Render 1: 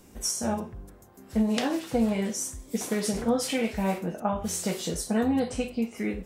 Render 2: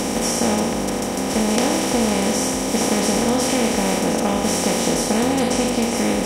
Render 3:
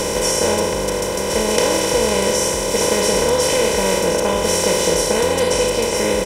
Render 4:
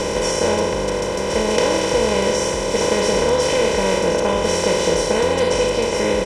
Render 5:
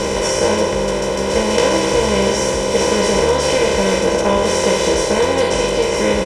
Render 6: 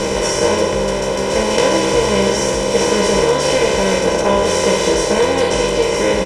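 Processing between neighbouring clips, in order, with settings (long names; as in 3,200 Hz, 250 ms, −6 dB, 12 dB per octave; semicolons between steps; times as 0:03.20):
compressor on every frequency bin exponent 0.2
comb filter 2 ms, depth 85%; level +1 dB
high-frequency loss of the air 73 metres
double-tracking delay 15 ms −4 dB; level +1.5 dB
flanger 0.38 Hz, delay 6.4 ms, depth 1 ms, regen −67%; level +5 dB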